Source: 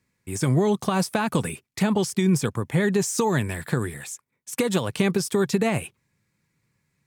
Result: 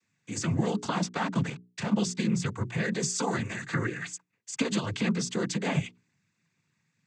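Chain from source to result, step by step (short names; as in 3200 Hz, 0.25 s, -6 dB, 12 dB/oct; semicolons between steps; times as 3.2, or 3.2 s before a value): bell 500 Hz -7 dB 1.3 oct; 0.95–1.96 backlash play -28.5 dBFS; compressor, threshold -23 dBFS, peak gain reduction 6 dB; 3.73–4.13 fifteen-band EQ 400 Hz +6 dB, 1600 Hz +8 dB, 6300 Hz -10 dB; noise vocoder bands 16; notches 60/120/180/240/300/360/420 Hz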